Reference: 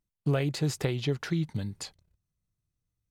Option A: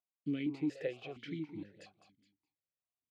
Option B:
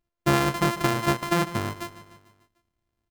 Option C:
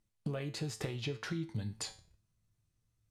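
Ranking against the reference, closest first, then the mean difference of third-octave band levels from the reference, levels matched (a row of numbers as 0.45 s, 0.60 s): C, A, B; 4.5 dB, 8.5 dB, 12.5 dB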